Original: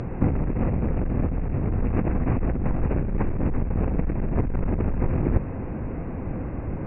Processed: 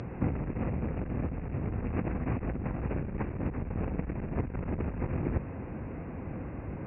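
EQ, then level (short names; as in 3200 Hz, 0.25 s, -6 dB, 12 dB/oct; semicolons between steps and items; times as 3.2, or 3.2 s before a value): HPF 52 Hz; air absorption 64 m; high shelf 2300 Hz +10 dB; -7.5 dB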